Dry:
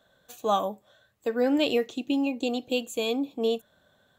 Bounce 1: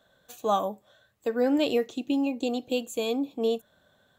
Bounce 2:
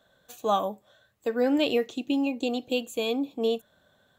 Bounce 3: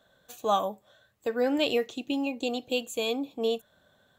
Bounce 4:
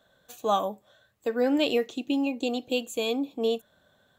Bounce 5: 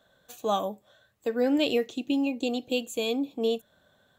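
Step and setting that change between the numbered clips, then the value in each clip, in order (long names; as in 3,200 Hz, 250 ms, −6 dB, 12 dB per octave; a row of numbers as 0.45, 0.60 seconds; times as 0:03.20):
dynamic equaliser, frequency: 2,800, 7,200, 270, 100, 1,100 Hertz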